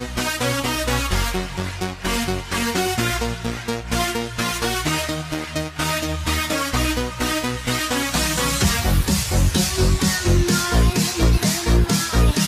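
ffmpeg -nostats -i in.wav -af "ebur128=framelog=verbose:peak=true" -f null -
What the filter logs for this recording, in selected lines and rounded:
Integrated loudness:
  I:         -20.8 LUFS
  Threshold: -30.8 LUFS
Loudness range:
  LRA:         4.5 LU
  Threshold: -41.0 LUFS
  LRA low:   -23.1 LUFS
  LRA high:  -18.6 LUFS
True peak:
  Peak:       -7.9 dBFS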